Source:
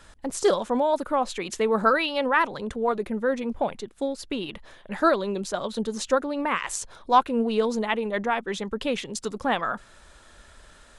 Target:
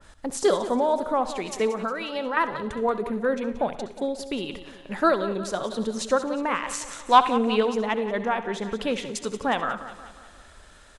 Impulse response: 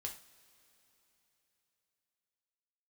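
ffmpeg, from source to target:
-filter_complex "[0:a]asettb=1/sr,asplit=3[link_01][link_02][link_03];[link_01]atrim=end=1.694[link_04];[link_02]atrim=start=1.69:end=2.37,asetpts=PTS-STARTPTS,afade=type=in:duration=0.004:curve=qsin,afade=type=out:start_time=0.676:duration=0.004:curve=qsin,acompressor=threshold=-26dB:ratio=6[link_05];[link_03]atrim=start=2.366[link_06];[link_04][link_05]acrossfade=duration=0.004:curve1=hsin:curve2=qsin[link_07];[link_07][link_06]acrossfade=duration=0.004:curve1=qsin:curve2=hsin,asettb=1/sr,asplit=3[link_08][link_09][link_10];[link_08]atrim=end=6.684[link_11];[link_09]atrim=start=6.68:end=7.63,asetpts=PTS-STARTPTS,afade=type=in:duration=0.004:curve=qsin,afade=type=out:start_time=0.946:duration=0.004:curve=qsin,equalizer=frequency=2400:width=0.76:gain=10[link_12];[link_10]atrim=start=7.626[link_13];[link_11][link_12]acrossfade=duration=0.004:curve1=hsin:curve2=qsin[link_14];[link_14][link_13]acrossfade=duration=0.004:curve1=qsin:curve2=hsin,aecho=1:1:180|360|540|720|900:0.224|0.112|0.056|0.028|0.014,asplit=2[link_15][link_16];[1:a]atrim=start_sample=2205,adelay=66[link_17];[link_16][link_17]afir=irnorm=-1:irlink=0,volume=-10.5dB[link_18];[link_15][link_18]amix=inputs=2:normalize=0,adynamicequalizer=threshold=0.0178:dfrequency=1700:dqfactor=0.7:tfrequency=1700:tqfactor=0.7:attack=5:release=100:ratio=0.375:range=2.5:mode=cutabove:tftype=highshelf"

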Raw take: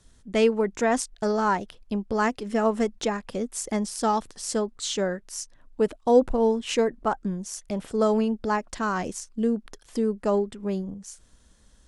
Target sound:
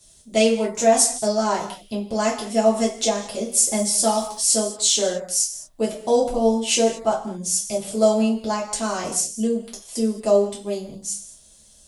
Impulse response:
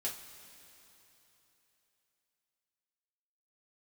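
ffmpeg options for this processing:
-filter_complex "[0:a]equalizer=frequency=160:width_type=o:width=0.67:gain=7,equalizer=frequency=630:width_type=o:width=0.67:gain=9,equalizer=frequency=1600:width_type=o:width=0.67:gain=-8,crystalizer=i=7:c=0,asettb=1/sr,asplit=3[link_01][link_02][link_03];[link_01]atrim=end=3.474[link_04];[link_02]atrim=start=3.47:end=4.51,asetpts=PTS-STARTPTS,afade=type=in:duration=0.004:curve=qsin,afade=type=out:start_time=1.036:duration=0.004:curve=qsin,acrusher=bits=7:mix=0:aa=0.5[link_05];[link_03]atrim=start=4.506[link_06];[link_04][link_05]acrossfade=duration=0.004:curve1=hsin:curve2=qsin[link_07];[link_07][link_06]acrossfade=duration=0.004:curve1=qsin:curve2=hsin[link_08];[1:a]atrim=start_sample=2205,afade=type=out:start_time=0.27:duration=0.01,atrim=end_sample=12348,asetrate=41013,aresample=44100[link_09];[link_08][link_09]afir=irnorm=-1:irlink=0,volume=-4dB"

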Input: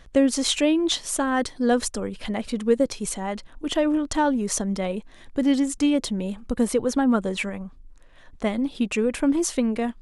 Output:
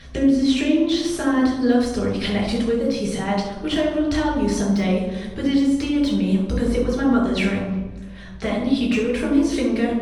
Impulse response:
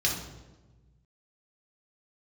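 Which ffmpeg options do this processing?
-filter_complex "[0:a]deesser=0.85,asetnsamples=nb_out_samples=441:pad=0,asendcmd='1.37 equalizer g -7',equalizer=frequency=250:width=6.5:gain=9.5,acompressor=threshold=-27dB:ratio=6[link_01];[1:a]atrim=start_sample=2205,asetrate=38367,aresample=44100[link_02];[link_01][link_02]afir=irnorm=-1:irlink=0"

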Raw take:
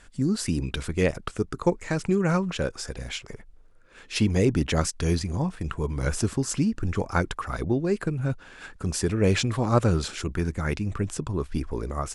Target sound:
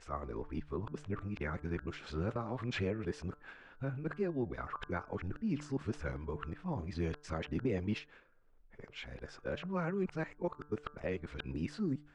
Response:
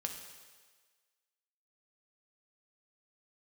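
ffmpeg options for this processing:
-af "areverse,lowpass=2600,lowshelf=frequency=200:gain=-6,alimiter=limit=-16.5dB:level=0:latency=1:release=324,bandreject=frequency=148:width_type=h:width=4,bandreject=frequency=296:width_type=h:width=4,bandreject=frequency=444:width_type=h:width=4,bandreject=frequency=592:width_type=h:width=4,bandreject=frequency=740:width_type=h:width=4,bandreject=frequency=888:width_type=h:width=4,bandreject=frequency=1036:width_type=h:width=4,bandreject=frequency=1184:width_type=h:width=4,bandreject=frequency=1332:width_type=h:width=4,bandreject=frequency=1480:width_type=h:width=4,bandreject=frequency=1628:width_type=h:width=4,volume=-8dB"

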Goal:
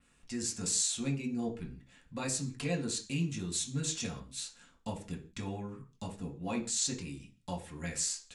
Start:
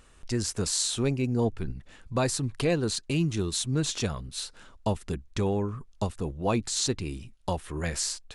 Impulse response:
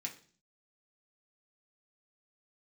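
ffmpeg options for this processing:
-filter_complex "[0:a]adynamicequalizer=threshold=0.00562:dfrequency=6900:dqfactor=1.5:tfrequency=6900:tqfactor=1.5:attack=5:release=100:ratio=0.375:range=3:mode=boostabove:tftype=bell[link_01];[1:a]atrim=start_sample=2205,afade=type=out:start_time=0.23:duration=0.01,atrim=end_sample=10584[link_02];[link_01][link_02]afir=irnorm=-1:irlink=0,volume=-6.5dB"

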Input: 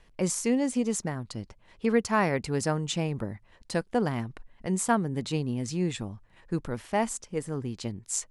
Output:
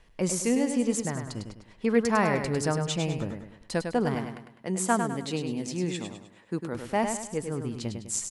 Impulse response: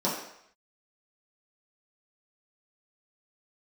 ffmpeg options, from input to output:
-filter_complex "[0:a]asettb=1/sr,asplit=3[link_01][link_02][link_03];[link_01]atrim=end=4.154[link_04];[link_02]atrim=start=4.15:end=6.75,asetpts=PTS-STARTPTS,afade=type=in:duration=0.004:curve=qsin,afade=type=out:start_time=2.596:duration=0.004:curve=qsin,highpass=180[link_05];[link_03]atrim=start=6.746[link_06];[link_04][link_05]acrossfade=duration=0.004:curve1=hsin:curve2=qsin[link_07];[link_07][link_06]acrossfade=duration=0.004:curve1=qsin:curve2=hsin,aecho=1:1:102|204|306|408|510:0.473|0.189|0.0757|0.0303|0.0121"

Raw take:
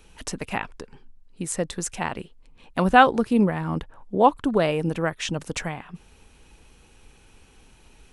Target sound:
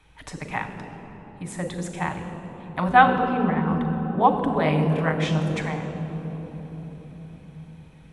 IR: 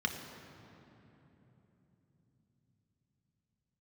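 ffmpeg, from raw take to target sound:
-filter_complex "[0:a]asettb=1/sr,asplit=3[link_01][link_02][link_03];[link_01]atrim=end=3.014[link_04];[link_02]atrim=start=3.01:end=3.68,asetpts=PTS-STARTPTS,afade=type=in:duration=0.004:curve=qsin,afade=type=out:start_time=0.666:duration=0.004:curve=qsin,lowpass=4000[link_05];[link_03]atrim=start=3.676[link_06];[link_04][link_05]acrossfade=duration=0.004:curve1=hsin:curve2=qsin[link_07];[link_07][link_06]acrossfade=duration=0.004:curve1=qsin:curve2=hsin,asettb=1/sr,asplit=3[link_08][link_09][link_10];[link_08]atrim=end=4.634[link_11];[link_09]atrim=start=4.63:end=5.4,asetpts=PTS-STARTPTS,afade=type=in:duration=0.004:curve=qsin,afade=type=out:start_time=0.766:duration=0.004:curve=qsin,asplit=2[link_12][link_13];[link_13]adelay=26,volume=-2dB[link_14];[link_12][link_14]amix=inputs=2:normalize=0,atrim=end_sample=33957[link_15];[link_10]atrim=start=5.396[link_16];[link_11][link_15]acrossfade=duration=0.004:curve1=hsin:curve2=qsin[link_17];[link_17][link_16]acrossfade=duration=0.004:curve1=qsin:curve2=hsin[link_18];[1:a]atrim=start_sample=2205,asetrate=28665,aresample=44100[link_19];[link_18][link_19]afir=irnorm=-1:irlink=0,volume=-9.5dB"

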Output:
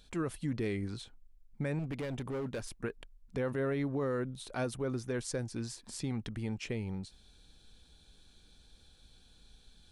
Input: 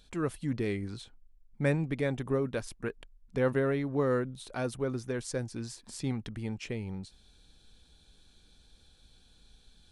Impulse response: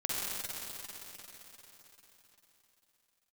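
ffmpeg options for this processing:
-filter_complex "[0:a]alimiter=level_in=1.5dB:limit=-24dB:level=0:latency=1:release=70,volume=-1.5dB,asettb=1/sr,asplit=3[link_01][link_02][link_03];[link_01]atrim=end=1.794[link_04];[link_02]atrim=start=1.79:end=2.69,asetpts=PTS-STARTPTS,afade=type=in:duration=0.004:curve=qsin,afade=type=out:start_time=0.896:duration=0.004:curve=qsin,asoftclip=type=hard:threshold=-33.5dB[link_05];[link_03]atrim=start=2.686[link_06];[link_04][link_05]acrossfade=duration=0.004:curve1=hsin:curve2=qsin[link_07];[link_07][link_06]acrossfade=duration=0.004:curve1=qsin:curve2=hsin"

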